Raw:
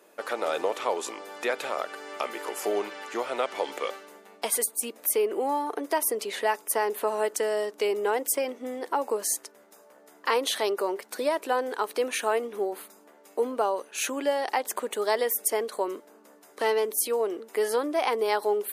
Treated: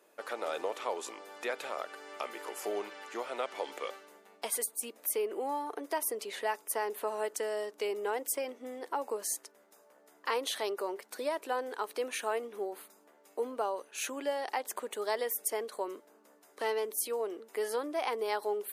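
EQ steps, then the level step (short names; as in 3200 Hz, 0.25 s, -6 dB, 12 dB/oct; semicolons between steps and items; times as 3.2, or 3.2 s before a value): low shelf 150 Hz -7.5 dB; -7.0 dB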